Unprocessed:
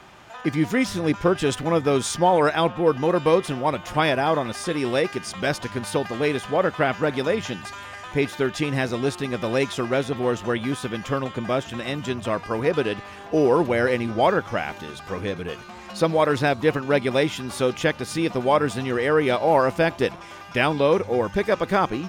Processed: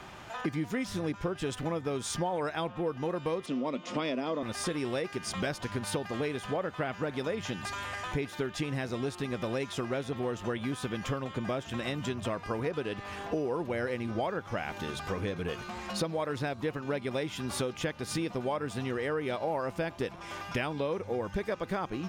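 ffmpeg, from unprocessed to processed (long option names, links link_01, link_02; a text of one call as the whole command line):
ffmpeg -i in.wav -filter_complex "[0:a]asettb=1/sr,asplit=3[link_01][link_02][link_03];[link_01]atrim=end=3.464[link_04];[link_02]atrim=start=3.46:end=4.43,asetpts=PTS-STARTPTS,afade=type=in:duration=0.004:curve=qsin,afade=type=out:start_time=0.966:duration=0.004:curve=qsin,highpass=frequency=180:width=0.5412,highpass=frequency=180:width=1.3066,equalizer=frequency=250:width_type=q:width=4:gain=10,equalizer=frequency=510:width_type=q:width=4:gain=3,equalizer=frequency=810:width_type=q:width=4:gain=-10,equalizer=frequency=1600:width_type=q:width=4:gain=-10,lowpass=frequency=7100:width=0.5412,lowpass=frequency=7100:width=1.3066[link_05];[link_03]atrim=start=4.426[link_06];[link_04][link_05]acrossfade=duration=0.004:curve1=hsin:curve2=qsin[link_07];[link_07][link_06]acrossfade=duration=0.004:curve1=qsin:curve2=hsin,lowshelf=frequency=150:gain=3.5,acompressor=threshold=-30dB:ratio=6" out.wav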